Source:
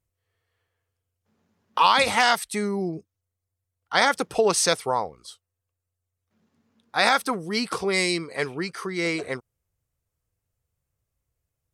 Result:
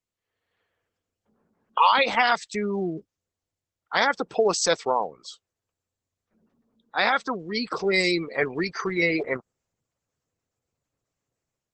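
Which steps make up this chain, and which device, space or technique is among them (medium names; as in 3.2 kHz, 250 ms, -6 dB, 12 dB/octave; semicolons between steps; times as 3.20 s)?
noise-suppressed video call (high-pass 170 Hz 12 dB/octave; spectral gate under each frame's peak -20 dB strong; level rider gain up to 9 dB; trim -4.5 dB; Opus 12 kbps 48 kHz)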